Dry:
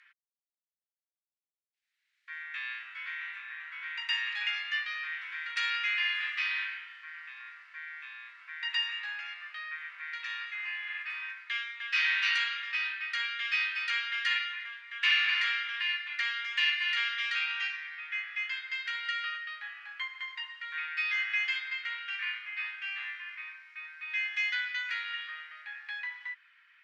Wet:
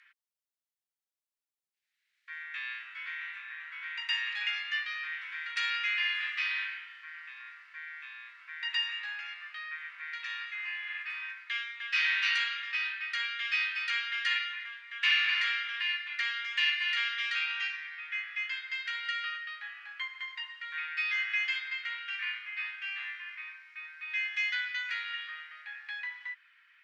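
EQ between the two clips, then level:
low-shelf EQ 480 Hz −9 dB
0.0 dB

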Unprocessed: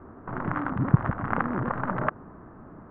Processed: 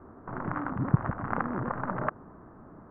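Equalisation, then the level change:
high-frequency loss of the air 280 metres
low-shelf EQ 410 Hz −4.5 dB
high-shelf EQ 2,600 Hz −8.5 dB
0.0 dB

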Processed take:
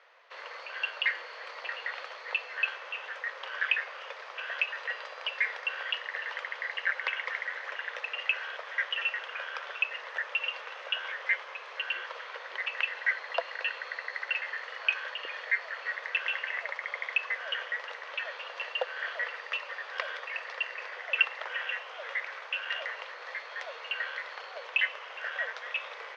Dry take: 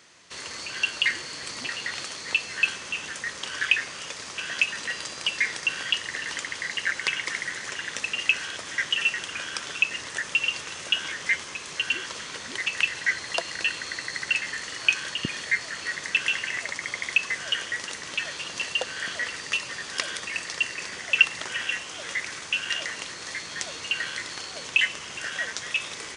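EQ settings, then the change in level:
elliptic high-pass filter 500 Hz, stop band 60 dB
high-frequency loss of the air 290 metres
high-shelf EQ 3,300 Hz −11 dB
+2.5 dB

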